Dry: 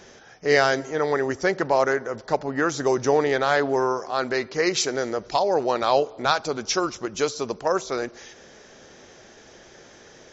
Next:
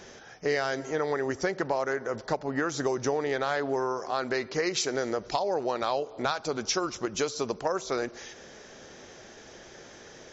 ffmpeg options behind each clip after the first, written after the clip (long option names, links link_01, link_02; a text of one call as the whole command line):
ffmpeg -i in.wav -af "acompressor=threshold=-25dB:ratio=5" out.wav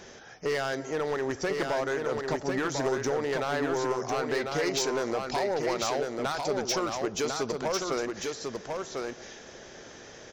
ffmpeg -i in.wav -af "asoftclip=type=hard:threshold=-24dB,aecho=1:1:1048:0.631" out.wav